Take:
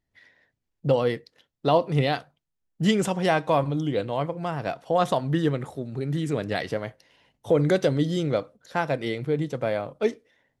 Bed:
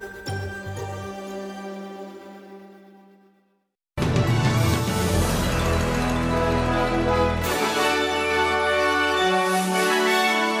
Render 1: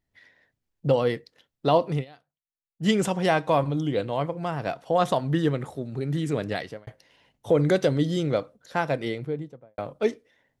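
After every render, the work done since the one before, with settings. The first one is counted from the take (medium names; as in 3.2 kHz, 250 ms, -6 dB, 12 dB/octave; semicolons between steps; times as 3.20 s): 1.92–2.90 s: dip -24 dB, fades 0.13 s; 6.47–6.87 s: fade out; 8.95–9.78 s: studio fade out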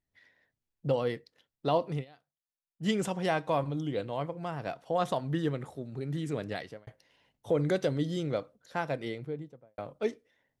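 trim -7 dB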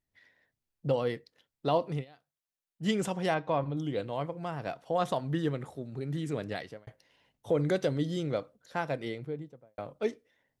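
3.34–3.77 s: distance through air 160 m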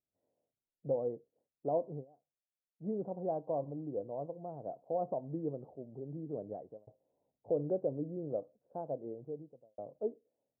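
steep low-pass 690 Hz 36 dB/octave; tilt EQ +4 dB/octave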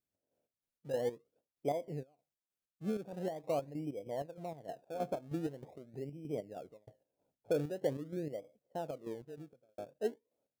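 square tremolo 3.2 Hz, depth 60%, duty 50%; in parallel at -11.5 dB: decimation with a swept rate 31×, swing 100% 0.44 Hz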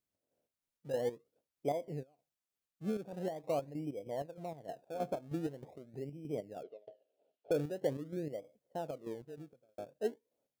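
6.63–7.51 s: cabinet simulation 330–4500 Hz, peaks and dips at 420 Hz +9 dB, 640 Hz +10 dB, 1 kHz -9 dB, 2 kHz -5 dB, 2.9 kHz +8 dB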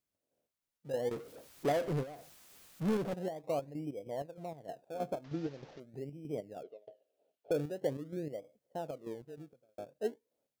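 1.11–3.14 s: power-law waveshaper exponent 0.5; 5.24–5.80 s: one-bit delta coder 32 kbps, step -50.5 dBFS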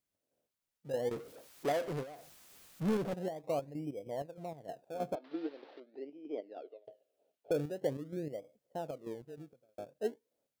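1.32–2.23 s: bass shelf 250 Hz -8.5 dB; 5.15–6.85 s: elliptic band-pass 290–4200 Hz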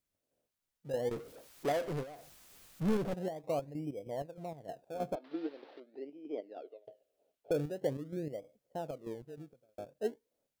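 bass shelf 62 Hz +11 dB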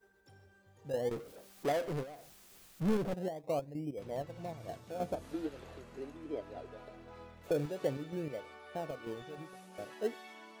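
add bed -31.5 dB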